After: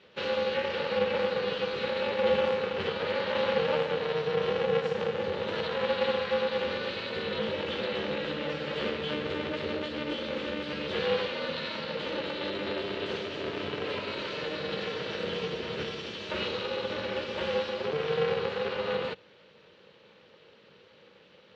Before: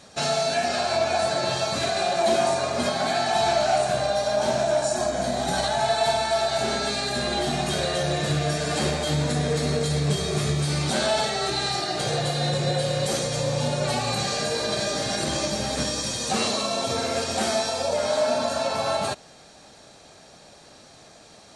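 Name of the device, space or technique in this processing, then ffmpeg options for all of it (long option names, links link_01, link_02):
ring modulator pedal into a guitar cabinet: -af "aeval=exprs='val(0)*sgn(sin(2*PI*150*n/s))':channel_layout=same,highpass=72,highpass=100,equalizer=frequency=190:width_type=q:width=4:gain=6,equalizer=frequency=280:width_type=q:width=4:gain=-8,equalizer=frequency=500:width_type=q:width=4:gain=9,equalizer=frequency=710:width_type=q:width=4:gain=-9,equalizer=frequency=1000:width_type=q:width=4:gain=-5,equalizer=frequency=2900:width_type=q:width=4:gain=6,lowpass=frequency=3500:width=0.5412,lowpass=frequency=3500:width=1.3066,equalizer=frequency=730:width_type=o:width=0.22:gain=-5.5,volume=-6.5dB"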